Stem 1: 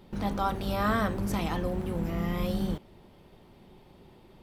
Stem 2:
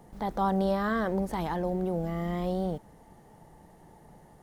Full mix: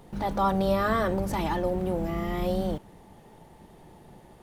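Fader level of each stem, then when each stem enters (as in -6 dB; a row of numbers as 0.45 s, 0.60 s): -2.0 dB, +1.5 dB; 0.00 s, 0.00 s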